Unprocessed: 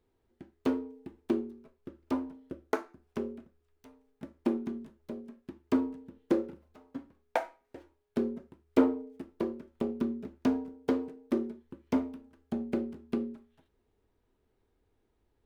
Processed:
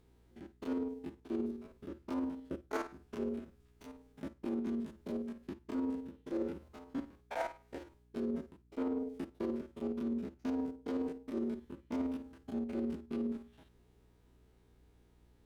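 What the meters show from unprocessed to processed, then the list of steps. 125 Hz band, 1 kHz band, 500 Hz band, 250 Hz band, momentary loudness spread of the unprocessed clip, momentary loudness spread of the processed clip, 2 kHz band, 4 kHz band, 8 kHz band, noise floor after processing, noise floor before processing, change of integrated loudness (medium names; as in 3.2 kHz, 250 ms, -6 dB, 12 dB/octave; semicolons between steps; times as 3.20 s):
-4.0 dB, -5.5 dB, -5.5 dB, -4.5 dB, 18 LU, 11 LU, -5.0 dB, -5.0 dB, no reading, -67 dBFS, -76 dBFS, -6.0 dB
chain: spectrogram pixelated in time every 50 ms; peaking EQ 5.8 kHz +4 dB 3 oct; reverse; compression 16:1, threshold -39 dBFS, peak gain reduction 21.5 dB; reverse; hum 60 Hz, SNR 27 dB; Chebyshev shaper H 8 -35 dB, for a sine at -27.5 dBFS; trim +6 dB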